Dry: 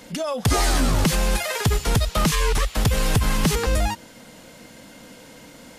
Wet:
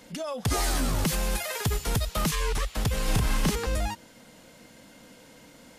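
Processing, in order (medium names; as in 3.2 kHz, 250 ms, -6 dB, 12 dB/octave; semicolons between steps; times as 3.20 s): 0.51–2.31 s: treble shelf 12 kHz +10 dB; 3.04–3.51 s: doubling 35 ms -2.5 dB; trim -7 dB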